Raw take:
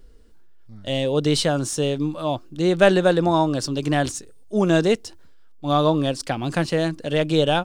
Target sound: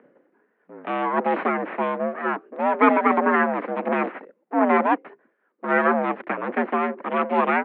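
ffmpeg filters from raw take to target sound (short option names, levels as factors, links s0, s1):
-filter_complex "[0:a]agate=range=0.0224:threshold=0.0141:ratio=3:detection=peak,asplit=2[s0][s1];[s1]acompressor=mode=upward:threshold=0.0794:ratio=2.5,volume=0.891[s2];[s0][s2]amix=inputs=2:normalize=0,aeval=exprs='abs(val(0))':c=same,highpass=f=160:t=q:w=0.5412,highpass=f=160:t=q:w=1.307,lowpass=f=2100:t=q:w=0.5176,lowpass=f=2100:t=q:w=0.7071,lowpass=f=2100:t=q:w=1.932,afreqshift=68,volume=0.891"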